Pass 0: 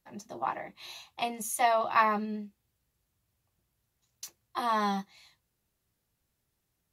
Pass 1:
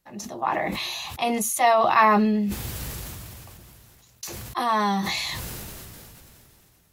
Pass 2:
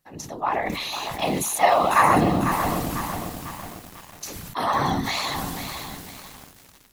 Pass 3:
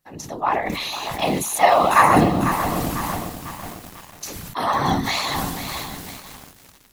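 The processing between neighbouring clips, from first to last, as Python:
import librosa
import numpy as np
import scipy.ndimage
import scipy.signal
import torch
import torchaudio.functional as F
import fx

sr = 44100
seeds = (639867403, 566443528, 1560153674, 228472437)

y1 = fx.sustainer(x, sr, db_per_s=20.0)
y1 = y1 * 10.0 ** (5.5 / 20.0)
y2 = fx.whisperise(y1, sr, seeds[0])
y2 = y2 + 10.0 ** (-14.0 / 20.0) * np.pad(y2, (int(625 * sr / 1000.0), 0))[:len(y2)]
y2 = fx.echo_crushed(y2, sr, ms=498, feedback_pct=55, bits=6, wet_db=-8)
y3 = fx.am_noise(y2, sr, seeds[1], hz=5.7, depth_pct=55)
y3 = y3 * 10.0 ** (5.0 / 20.0)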